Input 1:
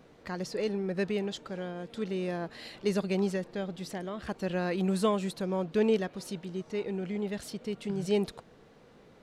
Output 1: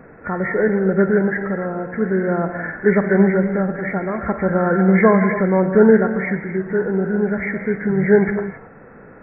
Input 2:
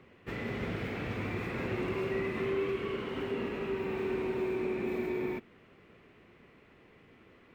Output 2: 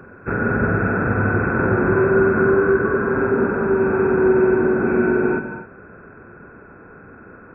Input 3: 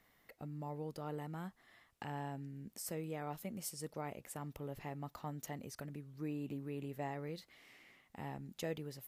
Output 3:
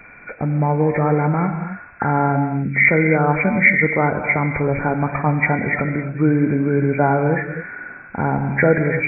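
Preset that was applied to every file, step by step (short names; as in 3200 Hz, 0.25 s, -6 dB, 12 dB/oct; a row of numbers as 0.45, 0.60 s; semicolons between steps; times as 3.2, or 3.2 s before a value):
nonlinear frequency compression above 1300 Hz 4:1; non-linear reverb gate 0.3 s flat, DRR 6.5 dB; match loudness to -18 LUFS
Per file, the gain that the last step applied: +13.0, +15.5, +25.0 dB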